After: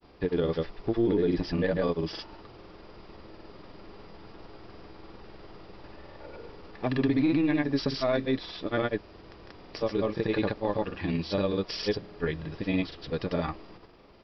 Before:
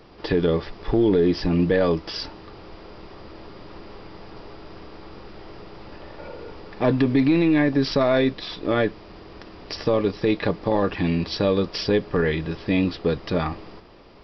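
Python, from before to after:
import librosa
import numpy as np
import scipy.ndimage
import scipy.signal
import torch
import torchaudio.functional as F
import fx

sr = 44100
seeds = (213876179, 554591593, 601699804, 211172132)

y = fx.granulator(x, sr, seeds[0], grain_ms=100.0, per_s=20.0, spray_ms=100.0, spread_st=0)
y = y * librosa.db_to_amplitude(-5.5)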